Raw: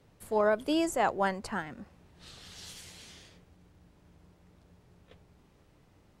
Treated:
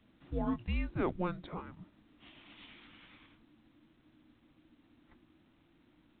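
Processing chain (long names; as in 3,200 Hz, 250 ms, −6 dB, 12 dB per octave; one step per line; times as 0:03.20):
pitch glide at a constant tempo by −8 semitones starting unshifted
frequency shifter −360 Hz
level −5 dB
A-law companding 64 kbit/s 8,000 Hz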